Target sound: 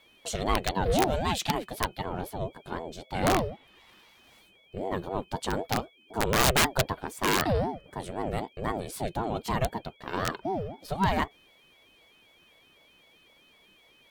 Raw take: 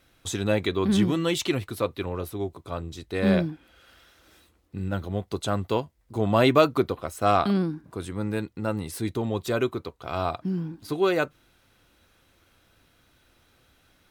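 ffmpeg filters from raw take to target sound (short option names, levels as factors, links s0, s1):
-af "aeval=exprs='val(0)+0.00158*sin(2*PI*2800*n/s)':c=same,aeval=exprs='(mod(4.47*val(0)+1,2)-1)/4.47':c=same,aeval=exprs='val(0)*sin(2*PI*420*n/s+420*0.4/3.9*sin(2*PI*3.9*n/s))':c=same"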